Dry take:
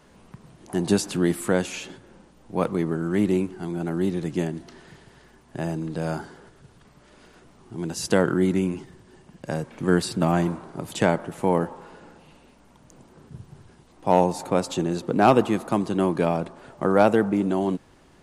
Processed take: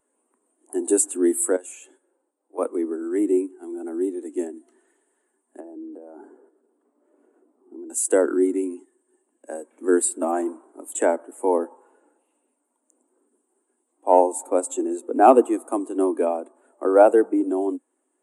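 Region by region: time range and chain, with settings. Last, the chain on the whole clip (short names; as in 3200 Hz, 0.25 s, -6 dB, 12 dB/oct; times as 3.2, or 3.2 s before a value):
1.56–2.58 HPF 330 Hz + compressor 2.5:1, threshold -34 dBFS + mismatched tape noise reduction decoder only
5.6–7.9 notch 3800 Hz, Q 15 + compressor 16:1, threshold -34 dBFS + tilt shelf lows +8 dB, about 1400 Hz
whole clip: steep high-pass 250 Hz 72 dB/oct; resonant high shelf 6500 Hz +10 dB, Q 3; spectral expander 1.5:1; gain +3 dB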